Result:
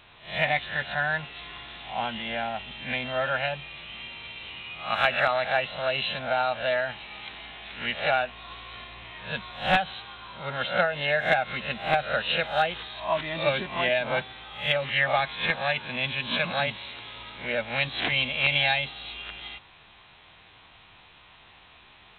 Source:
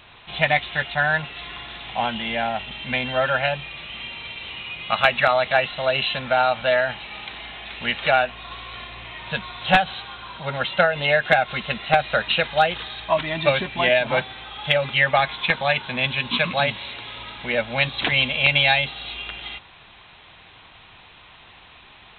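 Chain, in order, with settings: reverse spectral sustain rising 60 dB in 0.39 s; trim -7 dB

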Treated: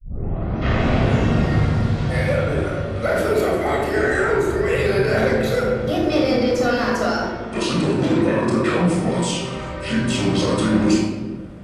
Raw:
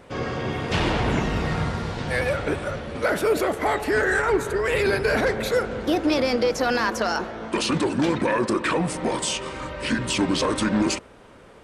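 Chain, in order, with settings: tape start-up on the opening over 1.08 s; dynamic bell 220 Hz, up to +4 dB, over -32 dBFS, Q 0.7; reverberation RT60 1.3 s, pre-delay 23 ms, DRR -2 dB; trim -5.5 dB

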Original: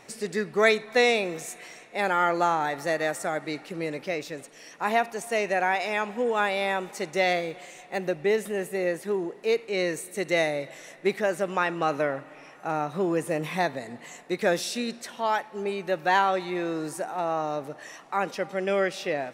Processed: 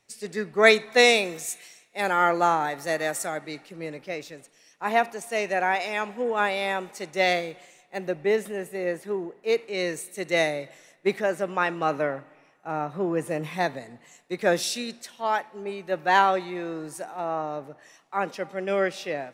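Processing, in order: 0.98–3.26 s: treble shelf 7.4 kHz +6.5 dB; three bands expanded up and down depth 70%

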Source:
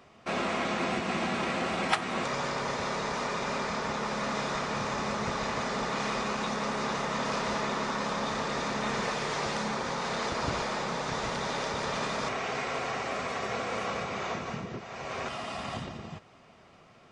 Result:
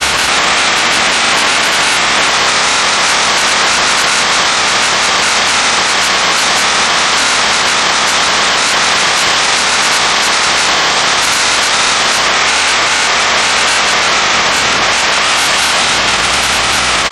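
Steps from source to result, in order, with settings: spectral levelling over time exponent 0.4; tilt EQ +4.5 dB/octave; mains buzz 60 Hz, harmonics 28, -51 dBFS -5 dB/octave; granulator, grains 20 per s, pitch spread up and down by 3 st; loudness maximiser +28.5 dB; trim -1 dB

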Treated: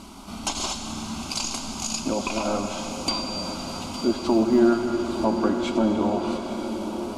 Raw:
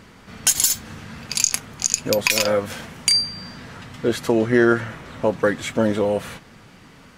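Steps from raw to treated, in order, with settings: CVSD coder 64 kbps; low-pass that closes with the level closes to 2.1 kHz, closed at -18 dBFS; in parallel at +2.5 dB: compression, threshold -35 dBFS, peak gain reduction 20.5 dB; on the sum: static phaser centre 480 Hz, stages 6; 3.67–4.59 s: short-mantissa float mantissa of 6-bit; echo that smears into a reverb 946 ms, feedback 58%, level -10 dB; on a send at -5.5 dB: reverberation RT60 5.7 s, pre-delay 43 ms

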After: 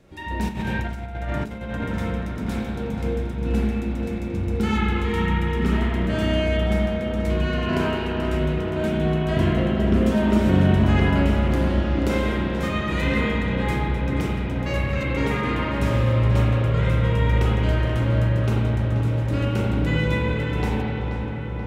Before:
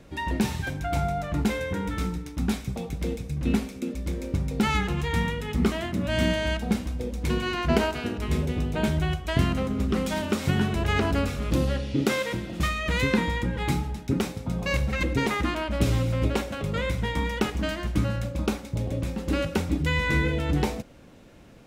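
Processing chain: 9.23–10.54 s: peaking EQ 250 Hz +8 dB 1.9 oct; filtered feedback delay 482 ms, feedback 78%, low-pass 3.1 kHz, level -7 dB; spring tank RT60 2.1 s, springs 32/43 ms, chirp 60 ms, DRR -6 dB; 0.48–1.84 s: compressor with a negative ratio -21 dBFS, ratio -0.5; trim -6 dB

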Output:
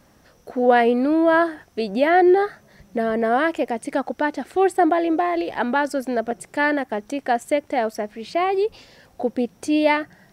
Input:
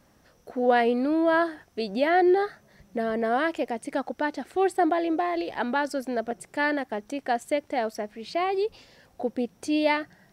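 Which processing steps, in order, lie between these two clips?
dynamic bell 4.3 kHz, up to -5 dB, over -48 dBFS, Q 1.6; trim +5.5 dB

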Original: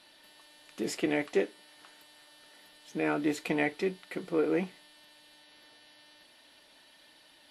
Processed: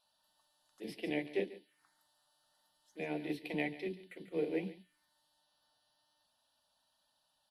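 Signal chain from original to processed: touch-sensitive phaser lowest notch 330 Hz, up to 1.3 kHz, full sweep at -34 dBFS; bands offset in time highs, lows 40 ms, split 340 Hz; vibrato 1.2 Hz 6.9 cents; on a send: delay 142 ms -11.5 dB; on the sum: upward expansion 1.5:1, over -51 dBFS; trim -2.5 dB

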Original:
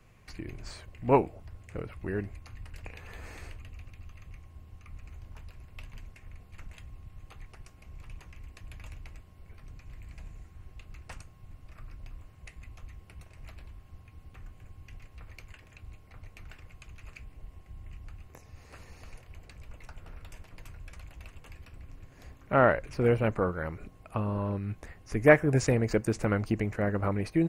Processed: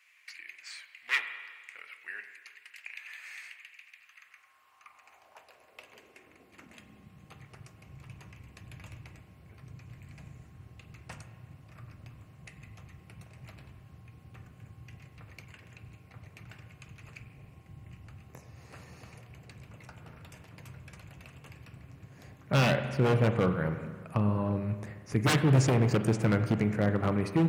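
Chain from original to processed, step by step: wavefolder -21 dBFS; spring tank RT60 1.6 s, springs 38/43 ms, chirp 65 ms, DRR 8 dB; high-pass sweep 2.1 kHz -> 130 Hz, 3.88–7.56 s

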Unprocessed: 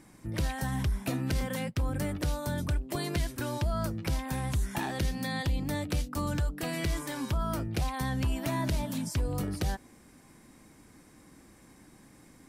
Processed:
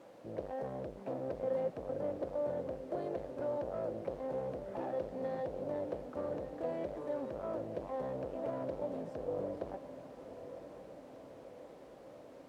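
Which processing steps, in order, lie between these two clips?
tilt EQ -1.5 dB/octave; valve stage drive 31 dB, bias 0.45; word length cut 8-bit, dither triangular; band-pass filter 540 Hz, Q 4.5; echo that smears into a reverb 1082 ms, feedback 61%, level -11.5 dB; trim +9.5 dB

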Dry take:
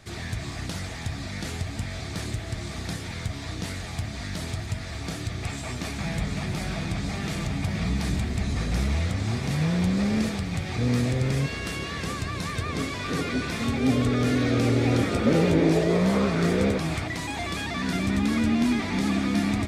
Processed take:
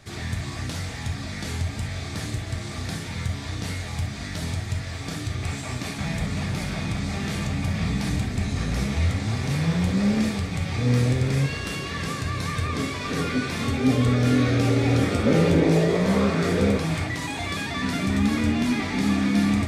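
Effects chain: gated-style reverb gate 90 ms flat, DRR 3.5 dB

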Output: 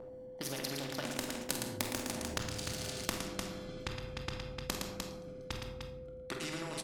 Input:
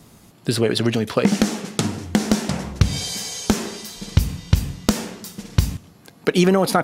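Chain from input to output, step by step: local Wiener filter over 41 samples; Doppler pass-by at 2.58 s, 55 m/s, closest 11 m; multi-tap echo 48/113/301 ms -10.5/-8.5/-12.5 dB; compression 10:1, threshold -36 dBFS, peak gain reduction 22.5 dB; whistle 510 Hz -44 dBFS; on a send at -3 dB: reverberation RT60 0.70 s, pre-delay 3 ms; on the sum: spectrum-flattening compressor 2:1; trim +6.5 dB

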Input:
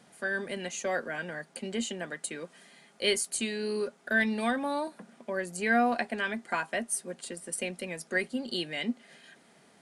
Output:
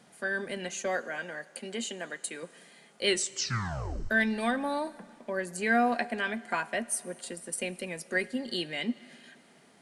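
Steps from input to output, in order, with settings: 0.96–2.43 s: high-pass 330 Hz 6 dB/octave; 3.06 s: tape stop 1.04 s; Schroeder reverb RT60 2.3 s, combs from 32 ms, DRR 19 dB

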